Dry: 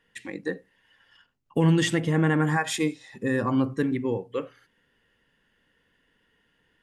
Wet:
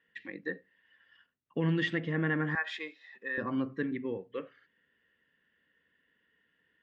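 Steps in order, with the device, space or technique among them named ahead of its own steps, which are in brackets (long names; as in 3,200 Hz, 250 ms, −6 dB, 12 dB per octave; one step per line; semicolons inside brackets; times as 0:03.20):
guitar cabinet (loudspeaker in its box 83–4,000 Hz, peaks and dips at 120 Hz −7 dB, 840 Hz −7 dB, 1,800 Hz +7 dB)
0:02.55–0:03.38: high-pass filter 670 Hz 12 dB per octave
level −8 dB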